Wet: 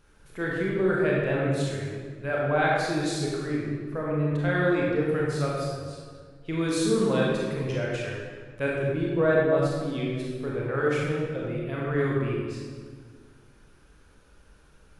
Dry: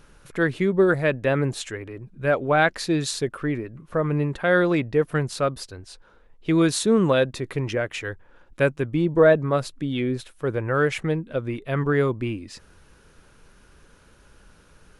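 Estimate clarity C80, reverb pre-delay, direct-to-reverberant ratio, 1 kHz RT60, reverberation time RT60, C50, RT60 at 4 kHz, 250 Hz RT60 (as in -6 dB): 1.0 dB, 26 ms, -4.5 dB, 1.6 s, 1.7 s, -2.0 dB, 1.2 s, 2.2 s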